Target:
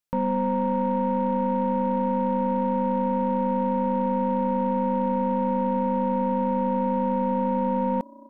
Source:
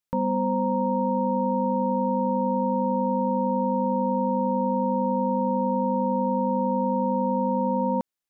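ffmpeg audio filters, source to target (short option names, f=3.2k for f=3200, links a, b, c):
-filter_complex "[0:a]asplit=4[a][b][c][d];[b]adelay=474,afreqshift=31,volume=-24dB[e];[c]adelay=948,afreqshift=62,volume=-30.7dB[f];[d]adelay=1422,afreqshift=93,volume=-37.5dB[g];[a][e][f][g]amix=inputs=4:normalize=0,aeval=exprs='0.188*(cos(1*acos(clip(val(0)/0.188,-1,1)))-cos(1*PI/2))+0.00596*(cos(6*acos(clip(val(0)/0.188,-1,1)))-cos(6*PI/2))':c=same"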